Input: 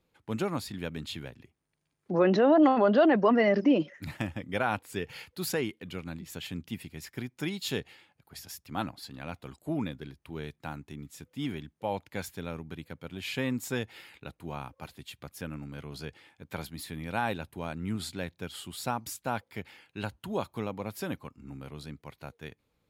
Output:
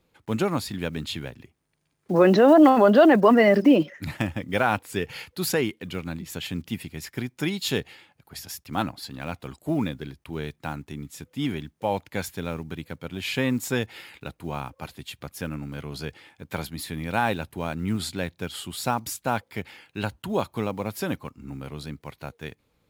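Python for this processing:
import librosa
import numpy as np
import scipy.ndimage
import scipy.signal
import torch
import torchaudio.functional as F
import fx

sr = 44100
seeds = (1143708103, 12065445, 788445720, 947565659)

y = fx.block_float(x, sr, bits=7)
y = F.gain(torch.from_numpy(y), 6.5).numpy()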